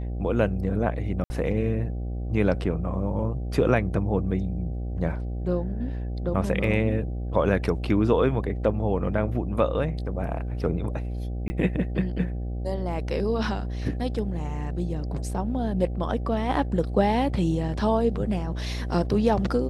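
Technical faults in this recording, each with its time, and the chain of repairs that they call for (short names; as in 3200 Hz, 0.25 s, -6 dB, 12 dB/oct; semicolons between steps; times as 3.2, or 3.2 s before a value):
buzz 60 Hz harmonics 13 -30 dBFS
1.24–1.3 gap 60 ms
11.48–11.5 gap 20 ms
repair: de-hum 60 Hz, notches 13; interpolate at 1.24, 60 ms; interpolate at 11.48, 20 ms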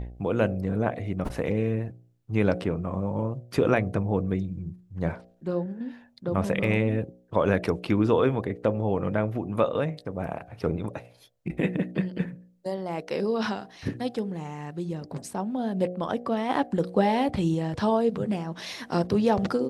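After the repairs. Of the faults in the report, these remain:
none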